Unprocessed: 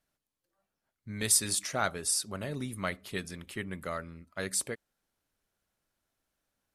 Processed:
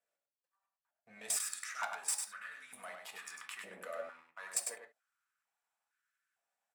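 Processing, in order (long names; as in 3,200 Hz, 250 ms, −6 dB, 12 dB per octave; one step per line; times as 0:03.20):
leveller curve on the samples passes 2
output level in coarse steps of 22 dB
spectral tilt −2 dB per octave
tube saturation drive 29 dB, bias 0.7
downward compressor, threshold −38 dBFS, peak gain reduction 7.5 dB
single-tap delay 100 ms −5.5 dB
convolution reverb, pre-delay 3 ms, DRR 4.5 dB
high-pass on a step sequencer 2.2 Hz 560–1,500 Hz
level +2.5 dB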